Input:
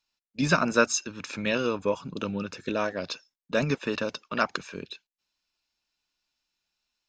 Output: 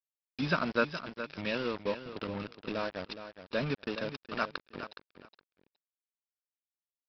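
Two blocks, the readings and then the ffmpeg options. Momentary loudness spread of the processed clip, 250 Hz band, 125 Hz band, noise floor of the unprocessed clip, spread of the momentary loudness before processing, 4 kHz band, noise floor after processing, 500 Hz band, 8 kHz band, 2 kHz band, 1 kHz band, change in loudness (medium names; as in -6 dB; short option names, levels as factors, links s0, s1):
14 LU, -7.0 dB, -6.5 dB, under -85 dBFS, 16 LU, -6.0 dB, under -85 dBFS, -6.5 dB, under -25 dB, -6.5 dB, -6.5 dB, -7.0 dB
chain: -af "aresample=11025,acrusher=bits=4:mix=0:aa=0.5,aresample=44100,aecho=1:1:417|834:0.282|0.0479,volume=0.447"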